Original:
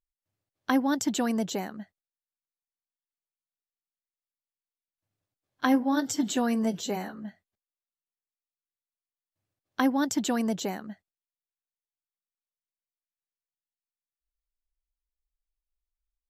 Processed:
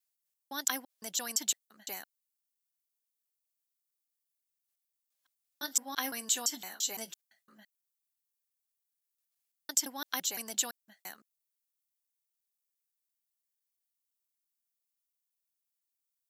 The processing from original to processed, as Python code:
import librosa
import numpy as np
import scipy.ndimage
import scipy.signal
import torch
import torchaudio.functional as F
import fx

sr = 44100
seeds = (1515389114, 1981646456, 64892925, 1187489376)

y = fx.block_reorder(x, sr, ms=170.0, group=3)
y = np.diff(y, prepend=0.0)
y = y * 10.0 ** (7.0 / 20.0)